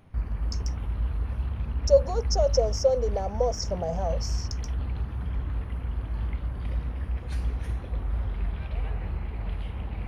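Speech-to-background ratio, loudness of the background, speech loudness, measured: 6.0 dB, −32.5 LKFS, −26.5 LKFS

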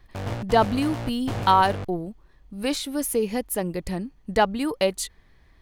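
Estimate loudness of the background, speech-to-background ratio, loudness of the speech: −33.0 LKFS, 8.0 dB, −25.0 LKFS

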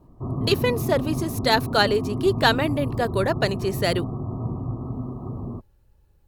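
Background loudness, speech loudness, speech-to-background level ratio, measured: −29.5 LKFS, −23.5 LKFS, 6.0 dB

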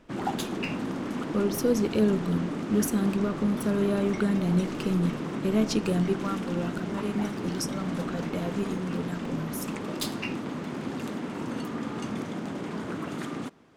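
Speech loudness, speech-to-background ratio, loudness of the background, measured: −29.5 LKFS, 4.5 dB, −34.0 LKFS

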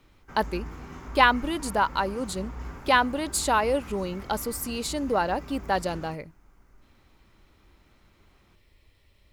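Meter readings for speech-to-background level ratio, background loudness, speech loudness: 15.5 dB, −42.0 LKFS, −26.5 LKFS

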